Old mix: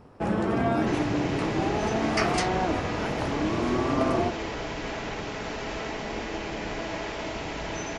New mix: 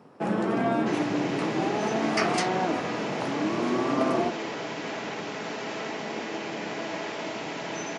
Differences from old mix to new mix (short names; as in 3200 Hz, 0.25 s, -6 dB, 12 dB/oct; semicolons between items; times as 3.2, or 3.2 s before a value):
speech: muted; master: add HPF 150 Hz 24 dB/oct